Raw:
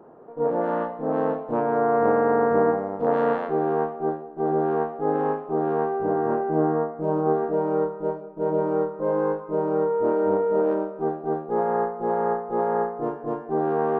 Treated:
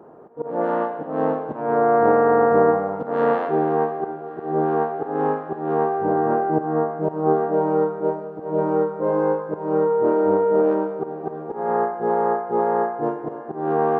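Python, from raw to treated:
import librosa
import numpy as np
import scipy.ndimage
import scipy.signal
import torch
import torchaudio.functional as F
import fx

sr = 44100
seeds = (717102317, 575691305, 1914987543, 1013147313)

y = scipy.signal.sosfilt(scipy.signal.butter(2, 41.0, 'highpass', fs=sr, output='sos'), x)
y = fx.auto_swell(y, sr, attack_ms=193.0)
y = fx.echo_thinned(y, sr, ms=552, feedback_pct=84, hz=420.0, wet_db=-20)
y = fx.rev_gated(y, sr, seeds[0], gate_ms=300, shape='flat', drr_db=10.5)
y = y * 10.0 ** (3.0 / 20.0)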